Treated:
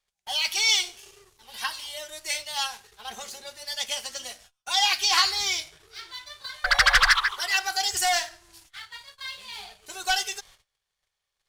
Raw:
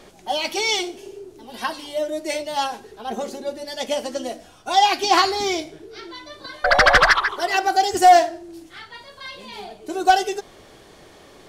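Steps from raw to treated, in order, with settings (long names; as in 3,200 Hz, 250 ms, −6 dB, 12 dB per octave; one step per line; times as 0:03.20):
dynamic equaliser 600 Hz, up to −6 dB, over −32 dBFS, Q 1.4
leveller curve on the samples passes 1
noise gate −42 dBFS, range −28 dB
guitar amp tone stack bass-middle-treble 10-0-10
notch filter 660 Hz, Q 12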